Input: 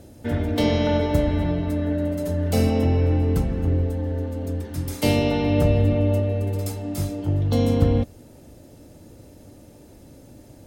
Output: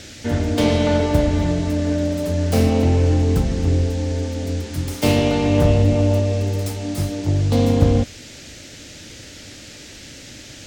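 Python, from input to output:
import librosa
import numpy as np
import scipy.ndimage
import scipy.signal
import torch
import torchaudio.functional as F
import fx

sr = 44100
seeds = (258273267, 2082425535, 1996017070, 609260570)

y = fx.self_delay(x, sr, depth_ms=0.22)
y = fx.dmg_noise_band(y, sr, seeds[0], low_hz=1500.0, high_hz=7200.0, level_db=-45.0)
y = F.gain(torch.from_numpy(y), 3.5).numpy()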